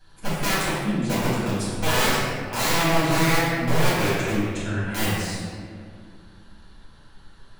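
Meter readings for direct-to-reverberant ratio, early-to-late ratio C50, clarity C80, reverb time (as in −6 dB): −13.0 dB, −3.5 dB, −1.0 dB, 2.1 s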